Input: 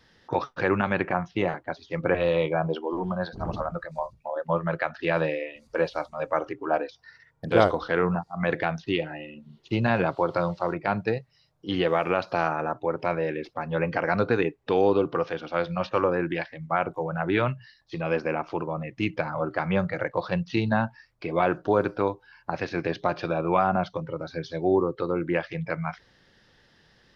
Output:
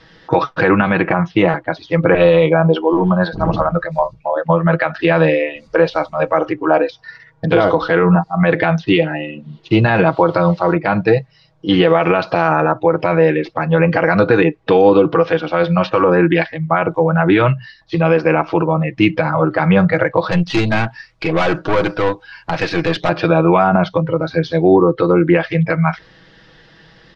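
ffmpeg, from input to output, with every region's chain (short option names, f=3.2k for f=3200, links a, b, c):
-filter_complex "[0:a]asettb=1/sr,asplit=3[a][b][c];[a]atrim=end=20.314[d];[b]atrim=start=20.31:end=23.09,asetpts=PTS-STARTPTS,afade=t=in:d=0.004:c=qsin,afade=t=out:st=2.776:d=0.004:c=qsin,highshelf=f=2.1k:g=9.5,aeval=exprs='(tanh(17.8*val(0)+0.45)-tanh(0.45))/17.8':c=same[e];[c]atrim=start=23.086[f];[d][e]acrossfade=d=0.004:c1=hsin:c2=qsin[g];[g][f]acrossfade=d=0.004:c1=qsin:c2=hsin,lowpass=4.4k,aecho=1:1:6.2:0.58,alimiter=level_in=14dB:limit=-1dB:release=50:level=0:latency=1,volume=-1dB"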